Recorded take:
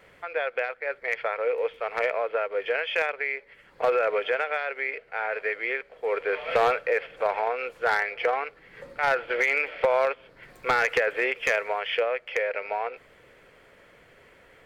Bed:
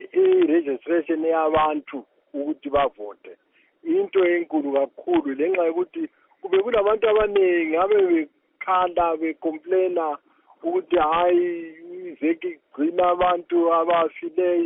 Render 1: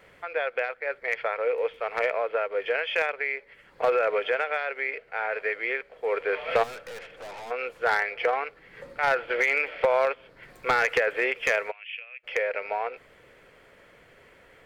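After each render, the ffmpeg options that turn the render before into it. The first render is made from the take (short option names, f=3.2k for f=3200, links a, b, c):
-filter_complex "[0:a]asplit=3[a][b][c];[a]afade=t=out:st=6.62:d=0.02[d];[b]aeval=exprs='(tanh(79.4*val(0)+0.25)-tanh(0.25))/79.4':c=same,afade=t=in:st=6.62:d=0.02,afade=t=out:st=7.5:d=0.02[e];[c]afade=t=in:st=7.5:d=0.02[f];[d][e][f]amix=inputs=3:normalize=0,asplit=3[g][h][i];[g]afade=t=out:st=11.7:d=0.02[j];[h]bandpass=f=2.6k:t=q:w=9.7,afade=t=in:st=11.7:d=0.02,afade=t=out:st=12.23:d=0.02[k];[i]afade=t=in:st=12.23:d=0.02[l];[j][k][l]amix=inputs=3:normalize=0"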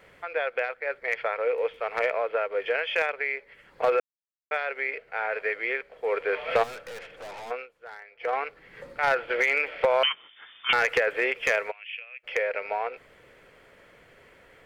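-filter_complex "[0:a]asettb=1/sr,asplit=3[a][b][c];[a]atrim=end=10.034[d];[b]atrim=start=10.03:end=10.73,asetpts=PTS-STARTPTS,afade=t=in:d=0.004:c=qsin,afade=t=out:st=0.696:d=0.004:c=qsin,lowpass=f=3.1k:t=q:w=0.5098,lowpass=f=3.1k:t=q:w=0.6013,lowpass=f=3.1k:t=q:w=0.9,lowpass=f=3.1k:t=q:w=2.563,afreqshift=-3600[e];[c]atrim=start=10.726[f];[d][e]acrossfade=d=0.004:c1=hsin:c2=qsin[g];[g][f]acrossfade=d=0.004:c1=qsin:c2=hsin,asplit=5[h][i][j][k][l];[h]atrim=end=4,asetpts=PTS-STARTPTS,afade=t=out:st=3.996:d=0.004:c=hsin[m];[i]atrim=start=4:end=4.51,asetpts=PTS-STARTPTS,volume=0[n];[j]atrim=start=4.51:end=7.67,asetpts=PTS-STARTPTS,afade=t=in:d=0.004:c=hsin,afade=t=out:st=3:d=0.16:silence=0.105925[o];[k]atrim=start=7.67:end=8.19,asetpts=PTS-STARTPTS,volume=-19.5dB[p];[l]atrim=start=8.19,asetpts=PTS-STARTPTS,afade=t=in:d=0.16:silence=0.105925[q];[m][n][o][p][q]concat=n=5:v=0:a=1"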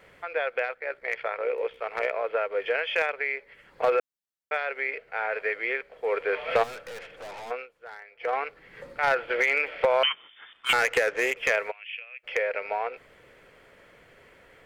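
-filter_complex "[0:a]asplit=3[a][b][c];[a]afade=t=out:st=0.73:d=0.02[d];[b]tremolo=f=62:d=0.519,afade=t=in:st=0.73:d=0.02,afade=t=out:st=2.23:d=0.02[e];[c]afade=t=in:st=2.23:d=0.02[f];[d][e][f]amix=inputs=3:normalize=0,asettb=1/sr,asplit=3[g][h][i];[g]atrim=end=10.534[j];[h]atrim=start=10.53:end=11.37,asetpts=PTS-STARTPTS,afade=t=in:d=0.004:c=qsin,afade=t=out:st=0.836:d=0.004:c=qsin,adynamicsmooth=sensitivity=6:basefreq=1.5k[k];[i]atrim=start=11.366[l];[j][k]acrossfade=d=0.004:c1=hsin:c2=qsin[m];[m][l]acrossfade=d=0.004:c1=qsin:c2=hsin"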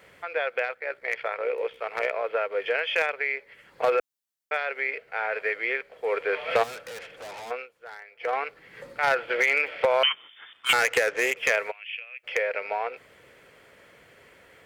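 -af "highpass=57,highshelf=f=3.8k:g=6"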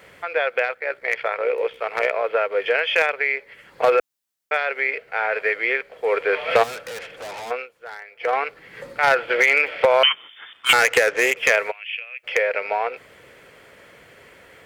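-af "volume=6dB"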